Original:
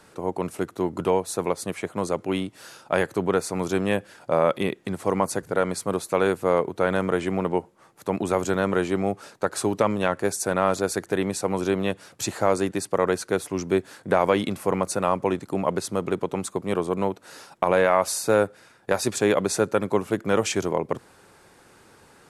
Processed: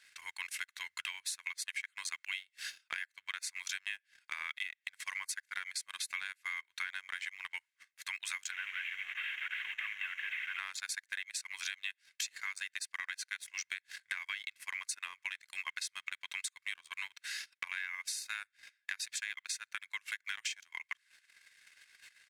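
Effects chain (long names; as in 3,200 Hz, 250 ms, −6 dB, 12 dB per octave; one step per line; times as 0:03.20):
0:08.51–0:10.59: linear delta modulator 16 kbit/s, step −30.5 dBFS
spectral tilt −4.5 dB per octave
noise gate −44 dBFS, range −6 dB
elliptic high-pass filter 1,900 Hz, stop band 70 dB
comb filter 1.9 ms, depth 40%
transient designer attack +3 dB, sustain −12 dB
downward compressor 16 to 1, threshold −50 dBFS, peak gain reduction 20 dB
leveller curve on the samples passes 1
level +11 dB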